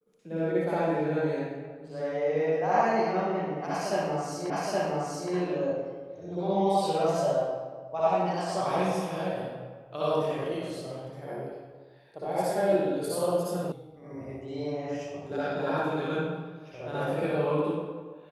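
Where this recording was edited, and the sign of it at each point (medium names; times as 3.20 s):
4.50 s: repeat of the last 0.82 s
13.72 s: sound stops dead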